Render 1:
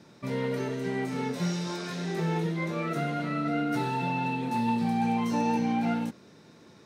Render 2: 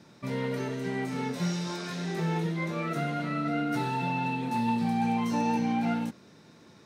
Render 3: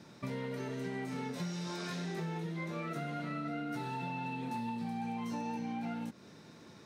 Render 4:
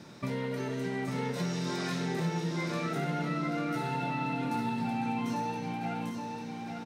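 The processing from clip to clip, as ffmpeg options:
ffmpeg -i in.wav -af "equalizer=frequency=430:width=1.5:gain=-2.5" out.wav
ffmpeg -i in.wav -af "acompressor=threshold=-36dB:ratio=6" out.wav
ffmpeg -i in.wav -af "aecho=1:1:847|1694|2541|3388:0.562|0.174|0.054|0.0168,volume=5dB" out.wav

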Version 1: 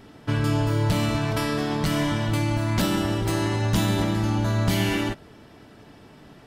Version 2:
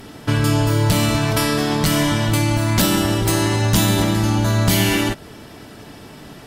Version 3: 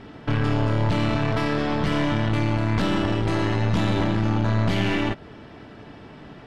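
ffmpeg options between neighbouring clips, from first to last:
ffmpeg -i in.wav -filter_complex "[0:a]asplit=2[link_01][link_02];[link_02]acompressor=threshold=-31dB:ratio=6,volume=-1.5dB[link_03];[link_01][link_03]amix=inputs=2:normalize=0,aemphasis=mode=production:type=cd,volume=4dB" out.wav
ffmpeg -i in.wav -af "aeval=exprs='(tanh(7.08*val(0)+0.65)-tanh(0.65))/7.08':channel_layout=same,lowpass=2800" out.wav

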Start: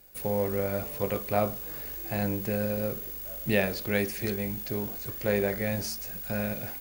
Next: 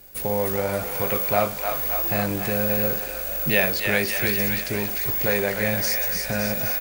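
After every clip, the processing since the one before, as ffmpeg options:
ffmpeg -i in.wav -filter_complex "[0:a]acrossover=split=660[link_01][link_02];[link_01]alimiter=level_in=2.5dB:limit=-24dB:level=0:latency=1:release=415,volume=-2.5dB[link_03];[link_02]aecho=1:1:300|570|813|1032|1229:0.631|0.398|0.251|0.158|0.1[link_04];[link_03][link_04]amix=inputs=2:normalize=0,volume=8dB" out.wav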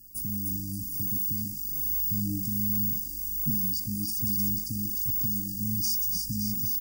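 ffmpeg -i in.wav -af "afftfilt=real='re*(1-between(b*sr/4096,310,4600))':imag='im*(1-between(b*sr/4096,310,4600))':win_size=4096:overlap=0.75,volume=-3dB" out.wav

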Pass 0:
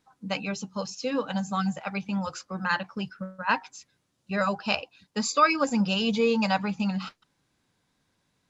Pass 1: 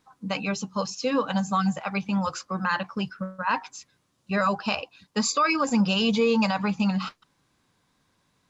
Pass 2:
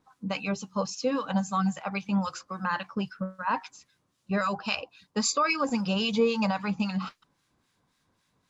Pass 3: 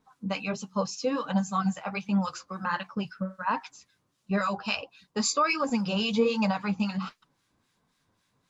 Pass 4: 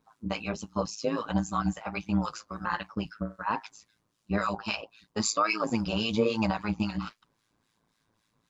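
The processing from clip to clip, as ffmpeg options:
ffmpeg -i in.wav -af "equalizer=frequency=1100:width_type=o:width=0.29:gain=6,alimiter=limit=-17.5dB:level=0:latency=1:release=54,volume=3.5dB" out.wav
ffmpeg -i in.wav -filter_complex "[0:a]acrossover=split=1300[link_01][link_02];[link_01]aeval=exprs='val(0)*(1-0.7/2+0.7/2*cos(2*PI*3.7*n/s))':channel_layout=same[link_03];[link_02]aeval=exprs='val(0)*(1-0.7/2-0.7/2*cos(2*PI*3.7*n/s))':channel_layout=same[link_04];[link_03][link_04]amix=inputs=2:normalize=0" out.wav
ffmpeg -i in.wav -af "flanger=delay=4.5:depth=5.8:regen=-41:speed=1.4:shape=sinusoidal,volume=3.5dB" out.wav
ffmpeg -i in.wav -af "tremolo=f=110:d=0.788,volume=2dB" out.wav

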